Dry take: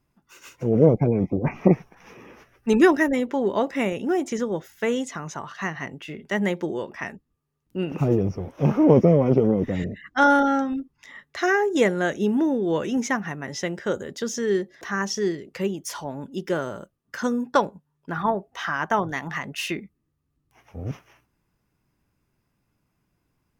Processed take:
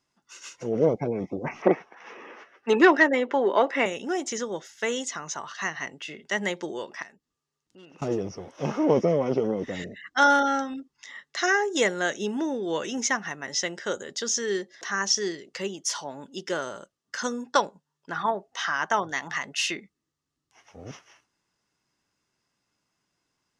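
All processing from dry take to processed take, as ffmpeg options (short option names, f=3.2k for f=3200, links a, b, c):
-filter_complex "[0:a]asettb=1/sr,asplit=3[a][b][c];[a]atrim=end=1.624[d];[b]atrim=start=1.62:end=3.86,asetpts=PTS-STARTPTS,afade=t=in:d=0.004:c=qsin,afade=t=out:st=2.236:d=0.004:c=qsin,acrossover=split=230 2900:gain=0.0794 1 0.126[e][f][g];[e][f][g]amix=inputs=3:normalize=0,acontrast=62[h];[c]atrim=start=3.856[i];[d][h]acrossfade=d=0.004:c1=hsin:c2=qsin[j];[j][i]acrossfade=d=0.004:c1=qsin:c2=hsin,asettb=1/sr,asplit=3[k][l][m];[k]atrim=end=7.024[n];[l]atrim=start=7.02:end=8.02,asetpts=PTS-STARTPTS,afade=t=in:d=0.004:c=qsin,afade=t=out:st=0.996:d=0.004:c=qsin,asoftclip=type=hard:threshold=-20.5dB,acompressor=threshold=-54dB:ratio=2:attack=3.2:release=140:knee=1:detection=peak[o];[m]atrim=start=8.016[p];[n][o]acrossfade=d=0.004:c1=hsin:c2=qsin[q];[q][p]acrossfade=d=0.004:c1=qsin:c2=hsin,lowpass=f=6.7k:w=0.5412,lowpass=f=6.7k:w=1.3066,aemphasis=mode=production:type=riaa,bandreject=f=2.4k:w=12,volume=-1.5dB"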